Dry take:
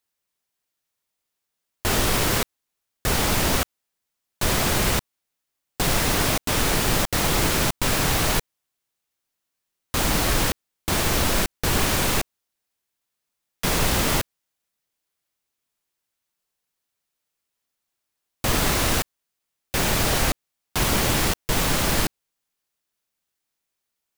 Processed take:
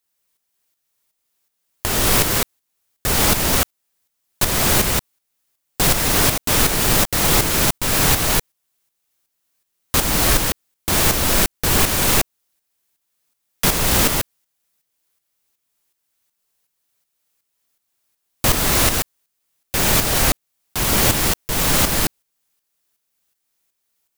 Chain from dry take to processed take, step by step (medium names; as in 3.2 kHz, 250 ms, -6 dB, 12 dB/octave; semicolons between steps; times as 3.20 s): treble shelf 7.1 kHz +6.5 dB; in parallel at +3 dB: peak limiter -13.5 dBFS, peak gain reduction 8 dB; on the sum: tremolo saw up 2.7 Hz, depth 60%